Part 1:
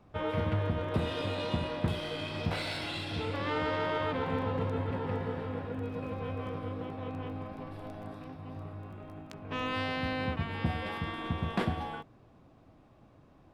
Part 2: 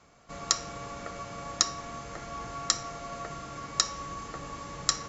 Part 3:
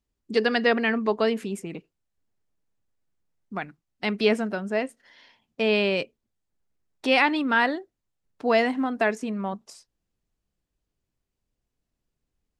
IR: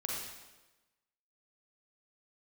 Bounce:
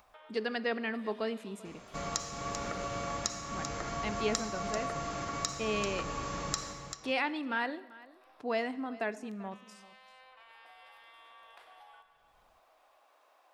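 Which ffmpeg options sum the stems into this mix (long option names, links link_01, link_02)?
-filter_complex "[0:a]highpass=frequency=640:width=0.5412,highpass=frequency=640:width=1.3066,highshelf=frequency=8400:gain=10.5,acompressor=threshold=-38dB:ratio=6,volume=-20dB,asplit=2[link_01][link_02];[link_02]volume=-8dB[link_03];[1:a]acompressor=threshold=-39dB:ratio=4,adelay=1650,volume=1.5dB,asplit=3[link_04][link_05][link_06];[link_05]volume=-5dB[link_07];[link_06]volume=-5.5dB[link_08];[2:a]volume=-12.5dB,asplit=3[link_09][link_10][link_11];[link_10]volume=-17dB[link_12];[link_11]volume=-19.5dB[link_13];[3:a]atrim=start_sample=2205[link_14];[link_03][link_07][link_12]amix=inputs=3:normalize=0[link_15];[link_15][link_14]afir=irnorm=-1:irlink=0[link_16];[link_08][link_13]amix=inputs=2:normalize=0,aecho=0:1:390:1[link_17];[link_01][link_04][link_09][link_16][link_17]amix=inputs=5:normalize=0,acompressor=mode=upward:threshold=-49dB:ratio=2.5"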